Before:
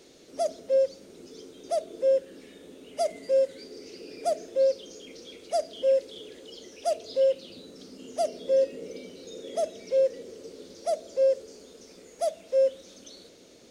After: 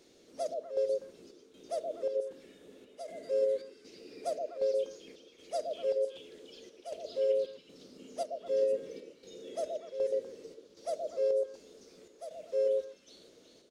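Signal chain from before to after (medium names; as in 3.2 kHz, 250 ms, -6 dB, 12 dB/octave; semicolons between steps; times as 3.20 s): square tremolo 1.3 Hz, depth 65%, duty 70%; repeats whose band climbs or falls 123 ms, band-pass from 470 Hz, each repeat 1.4 oct, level -0.5 dB; harmony voices -4 st -9 dB; trim -8.5 dB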